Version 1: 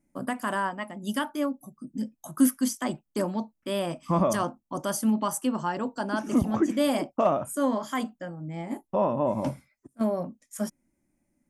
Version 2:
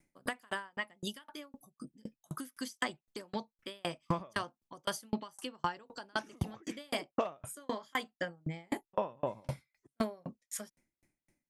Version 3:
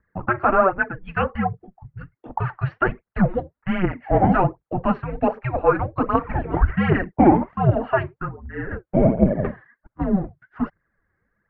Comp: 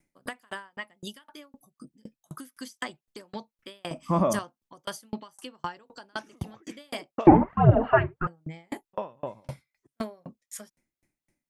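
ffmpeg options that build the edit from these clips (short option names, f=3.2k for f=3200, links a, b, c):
-filter_complex "[1:a]asplit=3[a][b][c];[a]atrim=end=3.912[d];[0:a]atrim=start=3.908:end=4.392[e];[b]atrim=start=4.388:end=7.272[f];[2:a]atrim=start=7.268:end=8.272[g];[c]atrim=start=8.268[h];[d][e]acrossfade=d=0.004:c1=hsin:c2=hsin[i];[i][f]acrossfade=d=0.004:c1=hsin:c2=hsin[j];[j][g]acrossfade=d=0.004:c1=hsin:c2=hsin[k];[k][h]acrossfade=d=0.004:c1=hsin:c2=hsin"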